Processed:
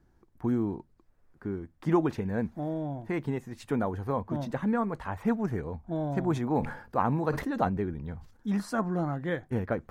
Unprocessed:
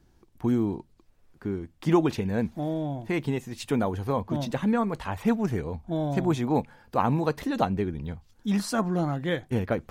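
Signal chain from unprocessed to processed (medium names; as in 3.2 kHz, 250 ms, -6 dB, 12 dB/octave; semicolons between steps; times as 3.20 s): resonant high shelf 2.2 kHz -6.5 dB, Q 1.5; 6.31–8.48 s: decay stretcher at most 98 dB/s; trim -3.5 dB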